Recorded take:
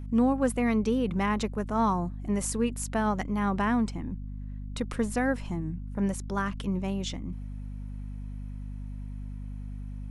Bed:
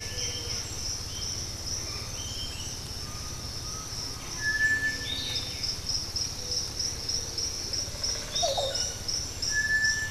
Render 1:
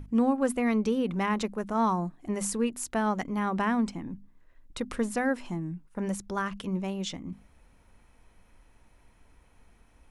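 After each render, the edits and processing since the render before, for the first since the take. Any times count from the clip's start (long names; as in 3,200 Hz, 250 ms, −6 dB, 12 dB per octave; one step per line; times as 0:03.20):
mains-hum notches 50/100/150/200/250 Hz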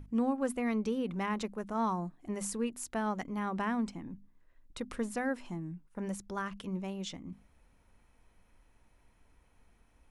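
level −6 dB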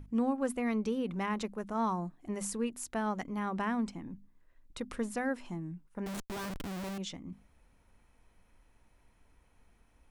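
0:06.06–0:06.98: comparator with hysteresis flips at −43 dBFS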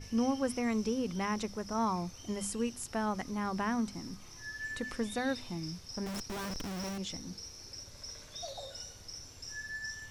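mix in bed −15.5 dB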